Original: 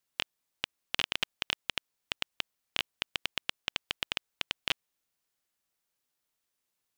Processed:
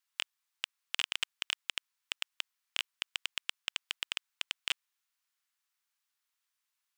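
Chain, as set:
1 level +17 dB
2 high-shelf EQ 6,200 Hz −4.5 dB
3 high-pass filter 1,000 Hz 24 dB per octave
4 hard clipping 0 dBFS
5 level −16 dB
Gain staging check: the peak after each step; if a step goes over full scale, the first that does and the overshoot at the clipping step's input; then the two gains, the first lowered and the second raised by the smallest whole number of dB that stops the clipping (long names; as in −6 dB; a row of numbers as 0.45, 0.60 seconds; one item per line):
+7.5, +7.0, +5.5, 0.0, −16.0 dBFS
step 1, 5.5 dB
step 1 +11 dB, step 5 −10 dB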